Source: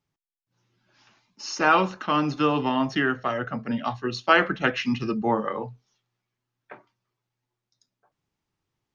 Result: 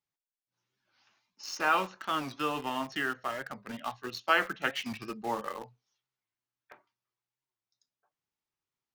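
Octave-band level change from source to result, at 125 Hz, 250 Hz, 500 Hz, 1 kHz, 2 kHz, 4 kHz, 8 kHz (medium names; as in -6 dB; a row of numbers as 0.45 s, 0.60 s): -15.5 dB, -13.5 dB, -10.0 dB, -7.5 dB, -6.5 dB, -5.5 dB, no reading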